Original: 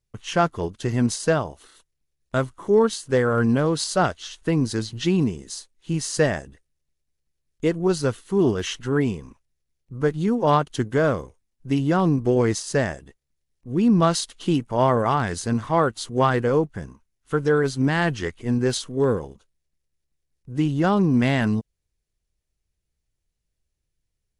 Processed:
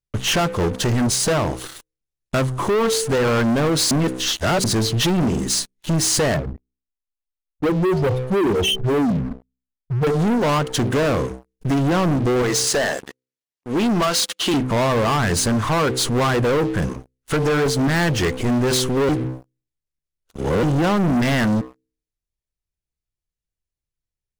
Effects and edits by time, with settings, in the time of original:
3.91–4.64 reverse
6.34–10.07 spectral contrast raised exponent 3.7
12.42–14.54 weighting filter A
19.09–20.63 reverse
whole clip: de-hum 63.83 Hz, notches 8; compressor 2.5:1, threshold -28 dBFS; sample leveller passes 5

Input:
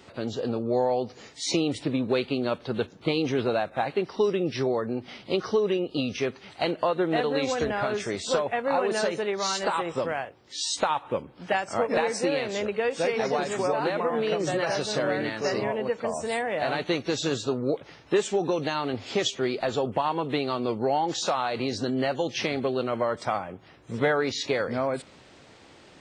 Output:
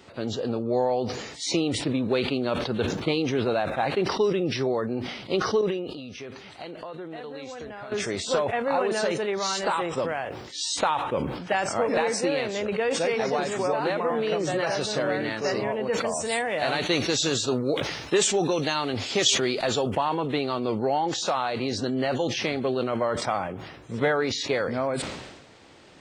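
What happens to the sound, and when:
5.61–7.92 compressor 3:1, threshold -39 dBFS
15.93–19.97 high shelf 2900 Hz +9 dB
whole clip: sustainer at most 48 dB/s

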